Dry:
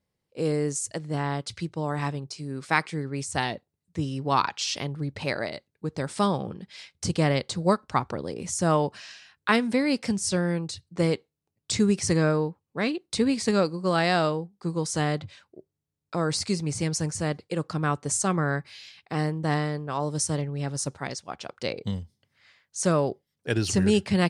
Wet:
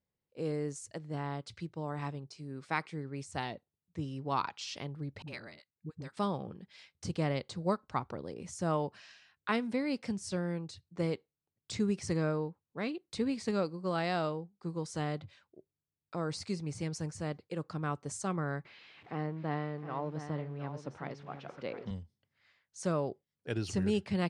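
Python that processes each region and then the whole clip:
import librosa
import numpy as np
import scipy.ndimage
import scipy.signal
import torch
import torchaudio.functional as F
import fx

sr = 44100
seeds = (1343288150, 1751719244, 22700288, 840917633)

y = fx.chain(x, sr, fx.peak_eq(hz=620.0, db=-10.5, octaves=1.6),
    fx.dispersion(late='highs', ms=56.0, hz=430.0),
    fx.upward_expand(threshold_db=-48.0, expansion=1.5), at=(5.22, 6.17))
y = fx.chain(y, sr, fx.zero_step(step_db=-39.0),
    fx.bandpass_edges(low_hz=140.0, high_hz=2600.0),
    fx.echo_single(ms=714, db=-10.5), at=(18.65, 21.91))
y = fx.lowpass(y, sr, hz=3700.0, slope=6)
y = fx.dynamic_eq(y, sr, hz=1700.0, q=6.9, threshold_db=-47.0, ratio=4.0, max_db=-4)
y = F.gain(torch.from_numpy(y), -9.0).numpy()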